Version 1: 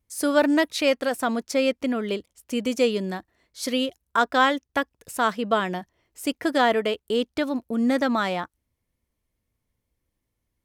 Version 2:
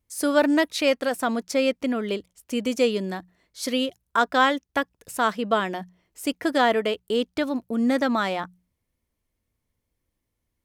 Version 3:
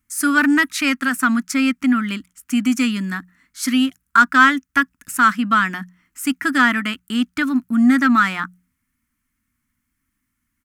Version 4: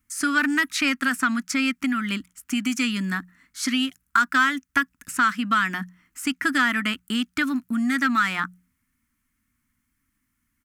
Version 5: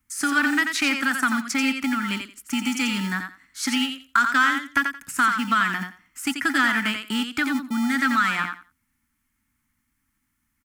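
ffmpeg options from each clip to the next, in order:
ffmpeg -i in.wav -af "bandreject=frequency=60:width_type=h:width=6,bandreject=frequency=120:width_type=h:width=6,bandreject=frequency=180:width_type=h:width=6" out.wav
ffmpeg -i in.wav -filter_complex "[0:a]firequalizer=gain_entry='entry(110,0);entry(260,11);entry(430,-21);entry(1300,14);entry(3700,0);entry(7100,8)':delay=0.05:min_phase=1,asplit=2[link_01][link_02];[link_02]asoftclip=type=tanh:threshold=-13dB,volume=-5.5dB[link_03];[link_01][link_03]amix=inputs=2:normalize=0,volume=-3dB" out.wav
ffmpeg -i in.wav -filter_complex "[0:a]acrossover=split=1600|7700[link_01][link_02][link_03];[link_01]acompressor=threshold=-24dB:ratio=4[link_04];[link_02]acompressor=threshold=-21dB:ratio=4[link_05];[link_03]acompressor=threshold=-42dB:ratio=4[link_06];[link_04][link_05][link_06]amix=inputs=3:normalize=0" out.wav
ffmpeg -i in.wav -filter_complex "[0:a]acrossover=split=250[link_01][link_02];[link_01]acrusher=samples=40:mix=1:aa=0.000001[link_03];[link_02]aecho=1:1:87|174|261:0.501|0.0902|0.0162[link_04];[link_03][link_04]amix=inputs=2:normalize=0" out.wav

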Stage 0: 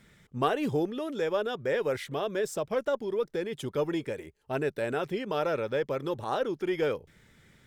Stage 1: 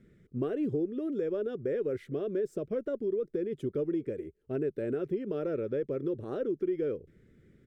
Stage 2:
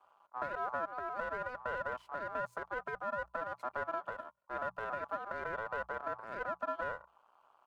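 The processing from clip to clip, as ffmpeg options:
ffmpeg -i in.wav -af "firequalizer=gain_entry='entry(160,0);entry(370,6);entry(880,-22);entry(1300,-11);entry(2100,-12);entry(3600,-18)':delay=0.05:min_phase=1,acompressor=threshold=-28dB:ratio=4" out.wav
ffmpeg -i in.wav -af "aeval=exprs='if(lt(val(0),0),0.251*val(0),val(0))':channel_layout=same,aeval=exprs='val(0)*sin(2*PI*1000*n/s)':channel_layout=same,bandreject=frequency=60:width_type=h:width=6,bandreject=frequency=120:width_type=h:width=6,bandreject=frequency=180:width_type=h:width=6,volume=-1.5dB" out.wav

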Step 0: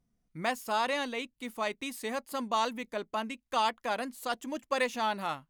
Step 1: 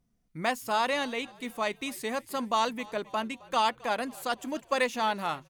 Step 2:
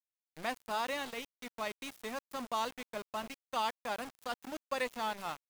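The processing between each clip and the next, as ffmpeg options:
ffmpeg -i in.wav -filter_complex "[0:a]asplit=5[link_01][link_02][link_03][link_04][link_05];[link_02]adelay=265,afreqshift=-46,volume=-22.5dB[link_06];[link_03]adelay=530,afreqshift=-92,volume=-28dB[link_07];[link_04]adelay=795,afreqshift=-138,volume=-33.5dB[link_08];[link_05]adelay=1060,afreqshift=-184,volume=-39dB[link_09];[link_01][link_06][link_07][link_08][link_09]amix=inputs=5:normalize=0,volume=2.5dB" out.wav
ffmpeg -i in.wav -af "aeval=exprs='val(0)*gte(abs(val(0)),0.0211)':channel_layout=same,volume=-8dB" out.wav

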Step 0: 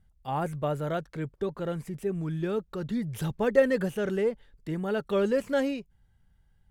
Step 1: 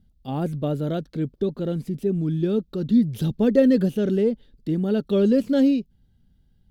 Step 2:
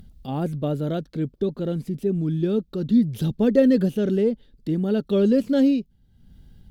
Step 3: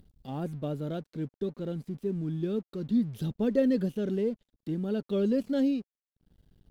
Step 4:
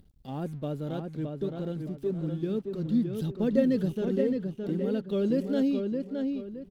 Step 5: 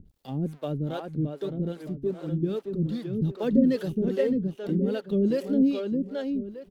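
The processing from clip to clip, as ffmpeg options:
ffmpeg -i in.wav -af "equalizer=frequency=250:width_type=o:width=1:gain=11,equalizer=frequency=1000:width_type=o:width=1:gain=-9,equalizer=frequency=2000:width_type=o:width=1:gain=-8,equalizer=frequency=4000:width_type=o:width=1:gain=7,equalizer=frequency=8000:width_type=o:width=1:gain=-7,volume=3dB" out.wav
ffmpeg -i in.wav -af "acompressor=mode=upward:threshold=-35dB:ratio=2.5" out.wav
ffmpeg -i in.wav -af "aeval=exprs='sgn(val(0))*max(abs(val(0))-0.00316,0)':channel_layout=same,volume=-8dB" out.wav
ffmpeg -i in.wav -filter_complex "[0:a]asplit=2[link_01][link_02];[link_02]adelay=617,lowpass=frequency=3400:poles=1,volume=-4.5dB,asplit=2[link_03][link_04];[link_04]adelay=617,lowpass=frequency=3400:poles=1,volume=0.35,asplit=2[link_05][link_06];[link_06]adelay=617,lowpass=frequency=3400:poles=1,volume=0.35,asplit=2[link_07][link_08];[link_08]adelay=617,lowpass=frequency=3400:poles=1,volume=0.35[link_09];[link_01][link_03][link_05][link_07][link_09]amix=inputs=5:normalize=0" out.wav
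ffmpeg -i in.wav -filter_complex "[0:a]acrossover=split=420[link_01][link_02];[link_01]aeval=exprs='val(0)*(1-1/2+1/2*cos(2*PI*2.5*n/s))':channel_layout=same[link_03];[link_02]aeval=exprs='val(0)*(1-1/2-1/2*cos(2*PI*2.5*n/s))':channel_layout=same[link_04];[link_03][link_04]amix=inputs=2:normalize=0,volume=7.5dB" out.wav

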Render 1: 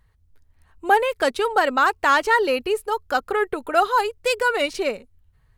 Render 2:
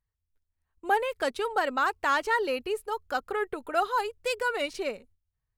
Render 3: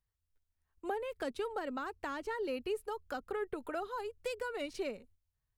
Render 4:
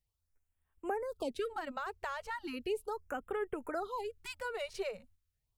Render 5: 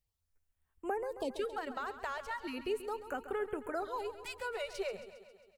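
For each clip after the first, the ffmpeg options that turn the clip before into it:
ffmpeg -i in.wav -af "agate=range=-16dB:threshold=-47dB:ratio=16:detection=peak,volume=-8dB" out.wav
ffmpeg -i in.wav -filter_complex "[0:a]acrossover=split=380[link_01][link_02];[link_02]acompressor=threshold=-38dB:ratio=5[link_03];[link_01][link_03]amix=inputs=2:normalize=0,volume=-2dB" out.wav
ffmpeg -i in.wav -af "afftfilt=real='re*(1-between(b*sr/1024,250*pow(5300/250,0.5+0.5*sin(2*PI*0.37*pts/sr))/1.41,250*pow(5300/250,0.5+0.5*sin(2*PI*0.37*pts/sr))*1.41))':imag='im*(1-between(b*sr/1024,250*pow(5300/250,0.5+0.5*sin(2*PI*0.37*pts/sr))/1.41,250*pow(5300/250,0.5+0.5*sin(2*PI*0.37*pts/sr))*1.41))':win_size=1024:overlap=0.75,volume=1dB" out.wav
ffmpeg -i in.wav -af "aecho=1:1:135|270|405|540|675|810|945:0.237|0.142|0.0854|0.0512|0.0307|0.0184|0.0111" out.wav

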